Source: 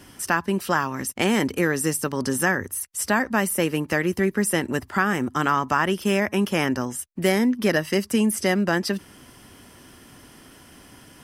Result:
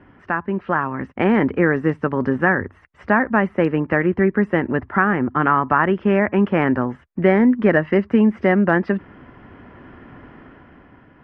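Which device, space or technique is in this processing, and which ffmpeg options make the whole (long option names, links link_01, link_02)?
action camera in a waterproof case: -af "lowpass=frequency=2000:width=0.5412,lowpass=frequency=2000:width=1.3066,dynaudnorm=framelen=130:gausssize=13:maxgain=8dB" -ar 48000 -c:a aac -b:a 128k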